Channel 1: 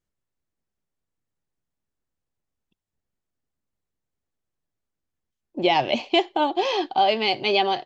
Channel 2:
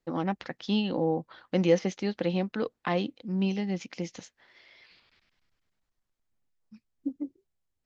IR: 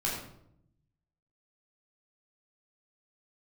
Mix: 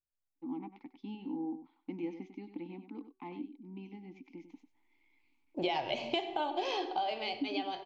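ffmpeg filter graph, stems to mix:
-filter_complex "[0:a]equalizer=frequency=210:width=1.5:gain=-6,volume=-5.5dB,afade=type=in:start_time=4.27:duration=0.29:silence=0.237137,afade=type=out:start_time=6.53:duration=0.79:silence=0.251189,asplit=2[link_01][link_02];[link_02]volume=-11.5dB[link_03];[1:a]asplit=3[link_04][link_05][link_06];[link_04]bandpass=frequency=300:width_type=q:width=8,volume=0dB[link_07];[link_05]bandpass=frequency=870:width_type=q:width=8,volume=-6dB[link_08];[link_06]bandpass=frequency=2240:width_type=q:width=8,volume=-9dB[link_09];[link_07][link_08][link_09]amix=inputs=3:normalize=0,equalizer=frequency=260:width=5.5:gain=10,bandreject=frequency=379.1:width_type=h:width=4,bandreject=frequency=758.2:width_type=h:width=4,bandreject=frequency=1137.3:width_type=h:width=4,bandreject=frequency=1516.4:width_type=h:width=4,adelay=350,volume=-4dB,asplit=2[link_10][link_11];[link_11]volume=-11dB[link_12];[2:a]atrim=start_sample=2205[link_13];[link_03][link_13]afir=irnorm=-1:irlink=0[link_14];[link_12]aecho=0:1:97:1[link_15];[link_01][link_10][link_14][link_15]amix=inputs=4:normalize=0,acompressor=threshold=-30dB:ratio=8"

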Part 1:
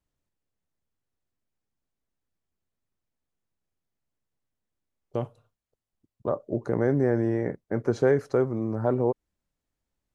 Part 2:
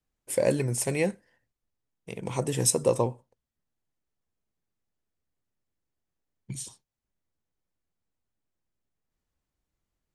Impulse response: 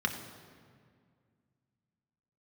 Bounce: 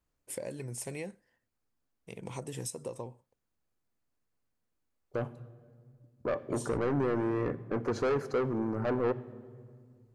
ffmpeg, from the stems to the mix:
-filter_complex "[0:a]asoftclip=type=tanh:threshold=-26.5dB,volume=0.5dB,asplit=2[link_01][link_02];[link_02]volume=-15.5dB[link_03];[1:a]acompressor=threshold=-28dB:ratio=12,volume=-7dB[link_04];[2:a]atrim=start_sample=2205[link_05];[link_03][link_05]afir=irnorm=-1:irlink=0[link_06];[link_01][link_04][link_06]amix=inputs=3:normalize=0"

